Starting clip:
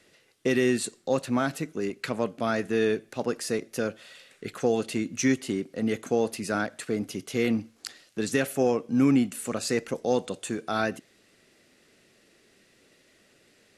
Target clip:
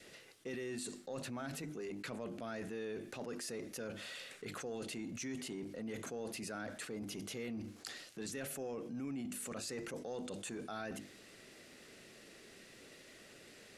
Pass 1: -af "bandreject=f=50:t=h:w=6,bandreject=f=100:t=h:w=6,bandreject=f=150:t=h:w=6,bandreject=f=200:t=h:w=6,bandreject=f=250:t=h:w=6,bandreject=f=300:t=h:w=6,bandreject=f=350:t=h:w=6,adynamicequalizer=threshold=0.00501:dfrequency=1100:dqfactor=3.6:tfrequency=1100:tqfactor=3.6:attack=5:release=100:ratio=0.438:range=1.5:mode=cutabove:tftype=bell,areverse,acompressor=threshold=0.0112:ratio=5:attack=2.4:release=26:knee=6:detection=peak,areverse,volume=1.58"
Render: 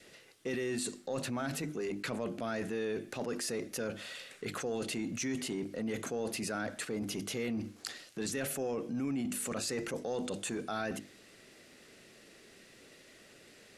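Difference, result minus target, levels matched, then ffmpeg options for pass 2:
compression: peak gain reduction -7 dB
-af "bandreject=f=50:t=h:w=6,bandreject=f=100:t=h:w=6,bandreject=f=150:t=h:w=6,bandreject=f=200:t=h:w=6,bandreject=f=250:t=h:w=6,bandreject=f=300:t=h:w=6,bandreject=f=350:t=h:w=6,adynamicequalizer=threshold=0.00501:dfrequency=1100:dqfactor=3.6:tfrequency=1100:tqfactor=3.6:attack=5:release=100:ratio=0.438:range=1.5:mode=cutabove:tftype=bell,areverse,acompressor=threshold=0.00398:ratio=5:attack=2.4:release=26:knee=6:detection=peak,areverse,volume=1.58"

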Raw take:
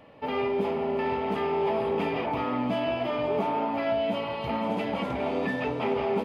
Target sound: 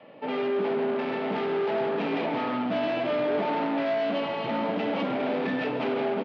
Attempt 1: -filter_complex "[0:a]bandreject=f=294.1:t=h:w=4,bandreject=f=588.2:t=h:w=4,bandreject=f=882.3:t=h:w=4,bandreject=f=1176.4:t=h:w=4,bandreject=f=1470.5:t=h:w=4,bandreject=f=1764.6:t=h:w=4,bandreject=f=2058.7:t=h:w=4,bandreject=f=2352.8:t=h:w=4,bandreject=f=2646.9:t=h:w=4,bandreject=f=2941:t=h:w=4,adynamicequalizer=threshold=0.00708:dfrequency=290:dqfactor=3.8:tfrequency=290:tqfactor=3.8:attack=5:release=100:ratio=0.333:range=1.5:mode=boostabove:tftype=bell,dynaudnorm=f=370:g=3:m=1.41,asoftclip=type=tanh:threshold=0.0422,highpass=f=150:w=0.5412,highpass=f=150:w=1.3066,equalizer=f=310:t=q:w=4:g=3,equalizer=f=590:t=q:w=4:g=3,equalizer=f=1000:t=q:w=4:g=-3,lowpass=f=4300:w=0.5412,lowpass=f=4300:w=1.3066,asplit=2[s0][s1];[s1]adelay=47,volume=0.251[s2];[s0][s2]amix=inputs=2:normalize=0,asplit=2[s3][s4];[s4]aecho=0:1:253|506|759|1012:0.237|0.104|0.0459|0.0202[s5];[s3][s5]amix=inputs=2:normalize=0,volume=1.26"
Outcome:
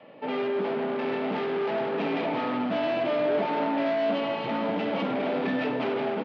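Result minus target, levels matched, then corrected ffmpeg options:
echo 115 ms late
-filter_complex "[0:a]bandreject=f=294.1:t=h:w=4,bandreject=f=588.2:t=h:w=4,bandreject=f=882.3:t=h:w=4,bandreject=f=1176.4:t=h:w=4,bandreject=f=1470.5:t=h:w=4,bandreject=f=1764.6:t=h:w=4,bandreject=f=2058.7:t=h:w=4,bandreject=f=2352.8:t=h:w=4,bandreject=f=2646.9:t=h:w=4,bandreject=f=2941:t=h:w=4,adynamicequalizer=threshold=0.00708:dfrequency=290:dqfactor=3.8:tfrequency=290:tqfactor=3.8:attack=5:release=100:ratio=0.333:range=1.5:mode=boostabove:tftype=bell,dynaudnorm=f=370:g=3:m=1.41,asoftclip=type=tanh:threshold=0.0422,highpass=f=150:w=0.5412,highpass=f=150:w=1.3066,equalizer=f=310:t=q:w=4:g=3,equalizer=f=590:t=q:w=4:g=3,equalizer=f=1000:t=q:w=4:g=-3,lowpass=f=4300:w=0.5412,lowpass=f=4300:w=1.3066,asplit=2[s0][s1];[s1]adelay=47,volume=0.251[s2];[s0][s2]amix=inputs=2:normalize=0,asplit=2[s3][s4];[s4]aecho=0:1:138|276|414|552:0.237|0.104|0.0459|0.0202[s5];[s3][s5]amix=inputs=2:normalize=0,volume=1.26"

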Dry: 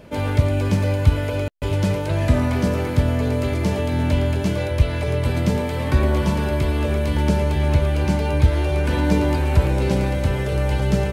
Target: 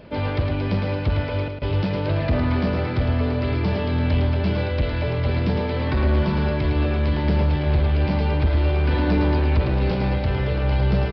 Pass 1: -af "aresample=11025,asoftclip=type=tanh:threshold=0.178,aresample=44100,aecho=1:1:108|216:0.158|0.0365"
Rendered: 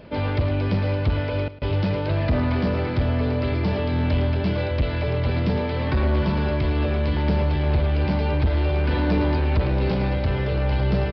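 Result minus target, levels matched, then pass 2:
echo-to-direct -9.5 dB
-af "aresample=11025,asoftclip=type=tanh:threshold=0.178,aresample=44100,aecho=1:1:108|216|324:0.473|0.109|0.025"

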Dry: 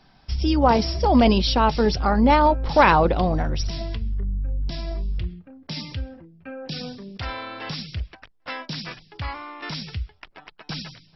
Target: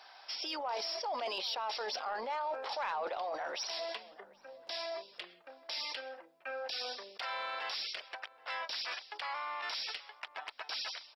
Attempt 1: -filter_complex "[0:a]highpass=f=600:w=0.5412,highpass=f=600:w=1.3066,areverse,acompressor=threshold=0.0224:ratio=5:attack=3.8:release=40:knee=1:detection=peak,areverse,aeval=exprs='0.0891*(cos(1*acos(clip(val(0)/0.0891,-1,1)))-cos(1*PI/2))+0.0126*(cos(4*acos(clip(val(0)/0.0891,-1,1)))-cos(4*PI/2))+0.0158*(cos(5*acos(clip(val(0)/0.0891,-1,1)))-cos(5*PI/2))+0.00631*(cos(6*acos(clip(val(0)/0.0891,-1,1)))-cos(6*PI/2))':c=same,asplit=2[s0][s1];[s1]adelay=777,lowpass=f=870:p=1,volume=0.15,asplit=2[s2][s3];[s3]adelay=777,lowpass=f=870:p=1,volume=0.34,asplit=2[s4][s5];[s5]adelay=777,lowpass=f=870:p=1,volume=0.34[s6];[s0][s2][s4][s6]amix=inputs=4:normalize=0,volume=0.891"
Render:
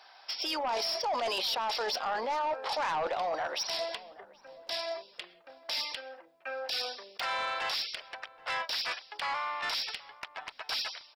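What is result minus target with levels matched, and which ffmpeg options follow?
compression: peak gain reduction -7 dB
-filter_complex "[0:a]highpass=f=600:w=0.5412,highpass=f=600:w=1.3066,areverse,acompressor=threshold=0.00794:ratio=5:attack=3.8:release=40:knee=1:detection=peak,areverse,aeval=exprs='0.0891*(cos(1*acos(clip(val(0)/0.0891,-1,1)))-cos(1*PI/2))+0.0126*(cos(4*acos(clip(val(0)/0.0891,-1,1)))-cos(4*PI/2))+0.0158*(cos(5*acos(clip(val(0)/0.0891,-1,1)))-cos(5*PI/2))+0.00631*(cos(6*acos(clip(val(0)/0.0891,-1,1)))-cos(6*PI/2))':c=same,asplit=2[s0][s1];[s1]adelay=777,lowpass=f=870:p=1,volume=0.15,asplit=2[s2][s3];[s3]adelay=777,lowpass=f=870:p=1,volume=0.34,asplit=2[s4][s5];[s5]adelay=777,lowpass=f=870:p=1,volume=0.34[s6];[s0][s2][s4][s6]amix=inputs=4:normalize=0,volume=0.891"

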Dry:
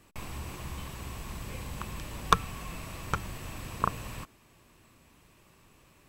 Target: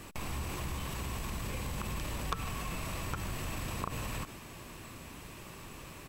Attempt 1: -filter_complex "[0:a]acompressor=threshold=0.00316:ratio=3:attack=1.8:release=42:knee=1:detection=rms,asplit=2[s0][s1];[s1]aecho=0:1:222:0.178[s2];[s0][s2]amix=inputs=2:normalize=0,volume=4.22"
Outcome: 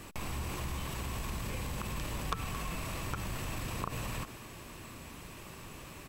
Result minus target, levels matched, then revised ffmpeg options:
echo 72 ms late
-filter_complex "[0:a]acompressor=threshold=0.00316:ratio=3:attack=1.8:release=42:knee=1:detection=rms,asplit=2[s0][s1];[s1]aecho=0:1:150:0.178[s2];[s0][s2]amix=inputs=2:normalize=0,volume=4.22"

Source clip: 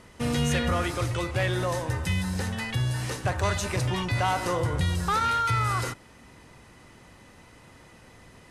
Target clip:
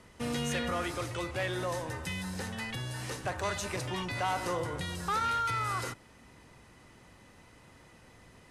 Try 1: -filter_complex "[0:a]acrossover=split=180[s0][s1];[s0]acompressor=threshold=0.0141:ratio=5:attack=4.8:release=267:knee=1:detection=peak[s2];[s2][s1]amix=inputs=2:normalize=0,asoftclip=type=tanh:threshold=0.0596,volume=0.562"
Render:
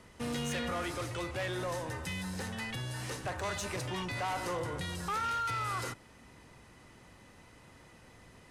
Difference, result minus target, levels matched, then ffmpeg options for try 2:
saturation: distortion +17 dB
-filter_complex "[0:a]acrossover=split=180[s0][s1];[s0]acompressor=threshold=0.0141:ratio=5:attack=4.8:release=267:knee=1:detection=peak[s2];[s2][s1]amix=inputs=2:normalize=0,asoftclip=type=tanh:threshold=0.224,volume=0.562"

